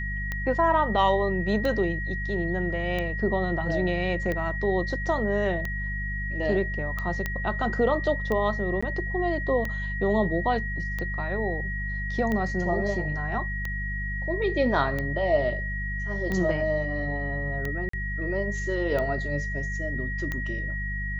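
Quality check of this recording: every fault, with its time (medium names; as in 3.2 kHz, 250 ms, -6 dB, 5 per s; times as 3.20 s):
hum 50 Hz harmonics 4 -32 dBFS
tick 45 rpm -17 dBFS
whine 1.9 kHz -32 dBFS
7.26 s: pop -14 dBFS
8.81–8.82 s: dropout 15 ms
17.89–17.93 s: dropout 44 ms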